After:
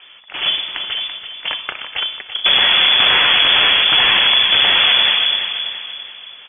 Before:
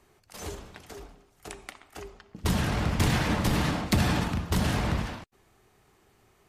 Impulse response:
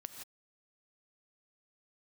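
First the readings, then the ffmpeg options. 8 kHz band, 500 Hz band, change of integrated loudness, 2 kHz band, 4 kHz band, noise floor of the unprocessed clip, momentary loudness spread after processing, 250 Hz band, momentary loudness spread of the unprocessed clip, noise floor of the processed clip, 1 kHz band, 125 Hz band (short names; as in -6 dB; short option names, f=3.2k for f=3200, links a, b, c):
under -40 dB, +5.0 dB, +15.5 dB, +19.5 dB, +28.0 dB, -64 dBFS, 15 LU, -8.5 dB, 20 LU, -40 dBFS, +11.0 dB, under -10 dB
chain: -af "aecho=1:1:335|670|1005|1340|1675:0.316|0.139|0.0612|0.0269|0.0119,apsyclip=28.5dB,lowpass=f=3k:t=q:w=0.5098,lowpass=f=3k:t=q:w=0.6013,lowpass=f=3k:t=q:w=0.9,lowpass=f=3k:t=q:w=2.563,afreqshift=-3500,volume=-8.5dB"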